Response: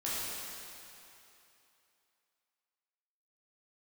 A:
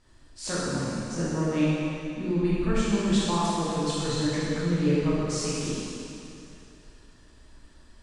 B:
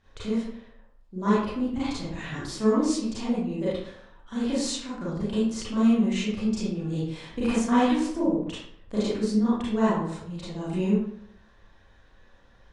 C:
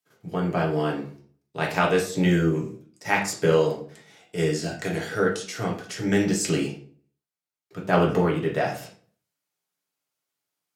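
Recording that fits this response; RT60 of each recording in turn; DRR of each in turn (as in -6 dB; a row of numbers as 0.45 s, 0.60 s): A; 2.9 s, 0.70 s, 0.50 s; -9.5 dB, -10.5 dB, -2.5 dB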